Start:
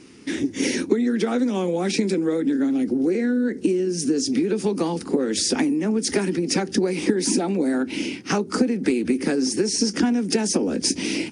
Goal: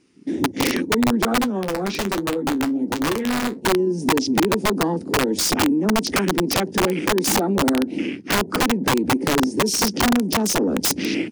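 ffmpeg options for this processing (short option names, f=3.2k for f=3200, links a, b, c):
-filter_complex "[0:a]afwtdn=0.0282,aeval=exprs='(mod(5.96*val(0)+1,2)-1)/5.96':c=same,asettb=1/sr,asplit=3[a][b][c];[a]atrim=end=1.414[d];[b]atrim=start=1.41:end=3.66,asetpts=PTS-STARTPTS,afade=t=in:d=0.004:c=qsin,afade=t=out:st=2.246:d=0.004:c=qsin,flanger=delay=7.2:depth=8.9:regen=-51:speed=1.2:shape=triangular[e];[c]atrim=start=3.656[f];[d][e]acrossfade=d=0.004:c1=hsin:c2=qsin[g];[g][f]acrossfade=d=0.004:c1=qsin:c2=hsin,volume=3dB"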